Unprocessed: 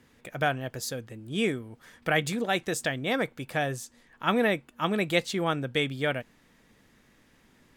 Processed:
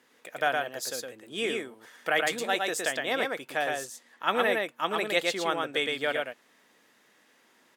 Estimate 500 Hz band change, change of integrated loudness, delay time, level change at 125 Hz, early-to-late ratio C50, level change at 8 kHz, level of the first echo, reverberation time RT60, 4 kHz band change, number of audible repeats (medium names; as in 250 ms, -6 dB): 0.0 dB, 0.0 dB, 113 ms, -15.5 dB, no reverb, +2.0 dB, -3.0 dB, no reverb, +2.0 dB, 1